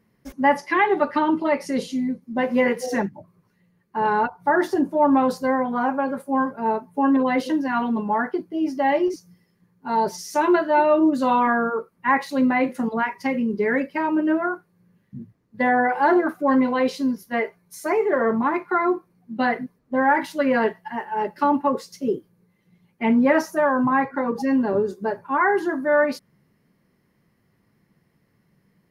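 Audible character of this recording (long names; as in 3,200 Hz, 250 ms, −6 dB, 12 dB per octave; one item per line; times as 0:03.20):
background noise floor −67 dBFS
spectral slope 0.0 dB per octave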